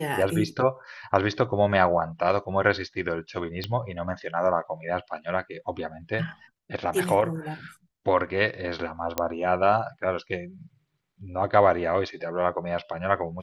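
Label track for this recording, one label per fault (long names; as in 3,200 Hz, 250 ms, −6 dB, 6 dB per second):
3.640000	3.640000	click −16 dBFS
9.180000	9.180000	click −9 dBFS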